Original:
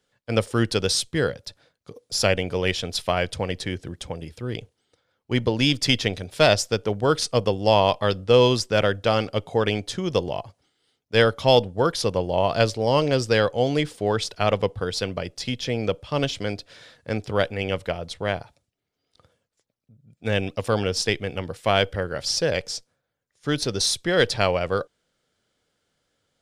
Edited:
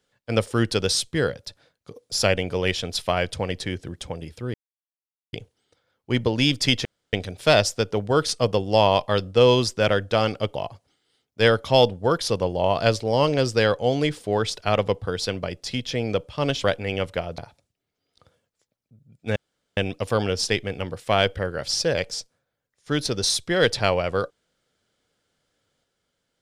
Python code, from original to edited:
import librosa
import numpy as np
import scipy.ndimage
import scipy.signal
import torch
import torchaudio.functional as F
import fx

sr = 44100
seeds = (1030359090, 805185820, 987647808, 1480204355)

y = fx.edit(x, sr, fx.insert_silence(at_s=4.54, length_s=0.79),
    fx.insert_room_tone(at_s=6.06, length_s=0.28),
    fx.cut(start_s=9.48, length_s=0.81),
    fx.cut(start_s=16.38, length_s=0.98),
    fx.cut(start_s=18.1, length_s=0.26),
    fx.insert_room_tone(at_s=20.34, length_s=0.41), tone=tone)